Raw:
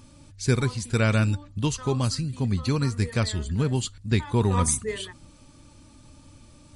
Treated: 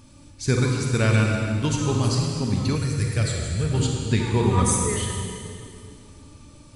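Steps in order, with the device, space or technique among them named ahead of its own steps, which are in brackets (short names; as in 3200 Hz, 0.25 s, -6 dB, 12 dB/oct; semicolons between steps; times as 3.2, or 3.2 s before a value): stairwell (reverb RT60 2.3 s, pre-delay 34 ms, DRR 0 dB); 2.75–3.74 fifteen-band EQ 250 Hz -12 dB, 1000 Hz -11 dB, 4000 Hz -4 dB, 10000 Hz +6 dB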